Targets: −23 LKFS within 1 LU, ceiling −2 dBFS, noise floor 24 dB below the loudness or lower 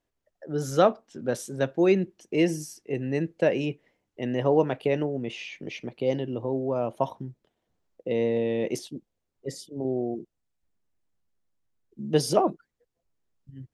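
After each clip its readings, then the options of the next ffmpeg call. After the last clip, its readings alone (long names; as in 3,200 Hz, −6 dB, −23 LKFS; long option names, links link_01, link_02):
integrated loudness −27.5 LKFS; sample peak −7.0 dBFS; target loudness −23.0 LKFS
→ -af "volume=4.5dB"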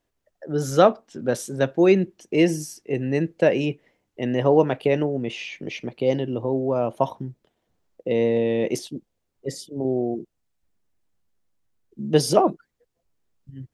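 integrated loudness −23.0 LKFS; sample peak −2.5 dBFS; background noise floor −77 dBFS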